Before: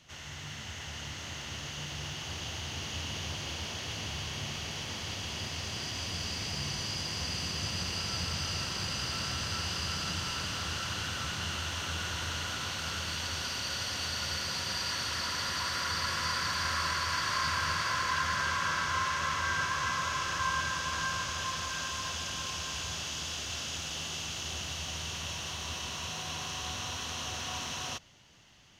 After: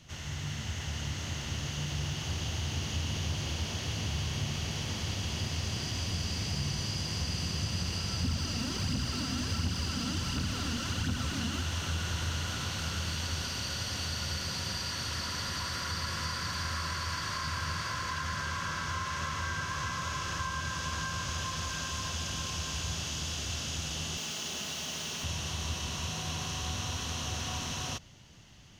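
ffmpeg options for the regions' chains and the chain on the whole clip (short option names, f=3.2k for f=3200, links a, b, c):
-filter_complex "[0:a]asettb=1/sr,asplit=3[a][b][c];[a]atrim=end=8.244[d];[b]atrim=start=8.24:end=11.63,asetpts=PTS-STARTPTS,afade=t=in:d=0.004:c=qsin,afade=t=out:st=3.386:d=0.004:c=qsin,aphaser=in_gain=1:out_gain=1:delay=4.5:decay=0.48:speed=1.4:type=triangular,equalizer=f=250:t=o:w=0.44:g=13[e];[c]atrim=start=11.626[f];[d][e]acrossfade=d=0.004:c1=hsin:c2=qsin[g];[g][f]acrossfade=d=0.004:c1=qsin:c2=hsin,asettb=1/sr,asplit=3[h][i][j];[h]atrim=end=24.174[k];[i]atrim=start=24.17:end=25.24,asetpts=PTS-STARTPTS,afade=t=in:d=0.004:c=qsin,afade=t=out:st=1.066:d=0.004:c=qsin,highpass=220,aecho=1:1:4.7:0.36,atrim=end_sample=47187,acrusher=bits=7:mix=0:aa=0.5[l];[j]atrim=start=25.236[m];[k][l]acrossfade=d=0.004:c1=hsin:c2=qsin[n];[n][m]acrossfade=d=0.004:c1=qsin:c2=hsin,bass=f=250:g=2,treble=f=4k:g=3,acompressor=threshold=-33dB:ratio=6,lowshelf=f=350:g=8"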